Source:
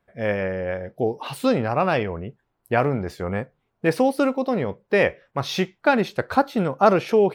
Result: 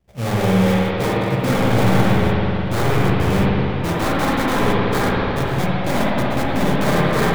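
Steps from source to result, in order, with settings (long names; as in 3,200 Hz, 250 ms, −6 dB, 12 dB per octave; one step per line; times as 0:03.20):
samples in bit-reversed order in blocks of 32 samples
low-pass filter 3,900 Hz 6 dB per octave
low-shelf EQ 270 Hz +10 dB
in parallel at −0.5 dB: brickwall limiter −13.5 dBFS, peak gain reduction 10 dB
on the sum: multi-voice chorus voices 4, 0.85 Hz, delay 16 ms, depth 1.4 ms
sample-rate reduction 2,800 Hz, jitter 20%
wave folding −16.5 dBFS
spring reverb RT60 3.8 s, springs 53/58 ms, chirp 70 ms, DRR −6.5 dB
level −1.5 dB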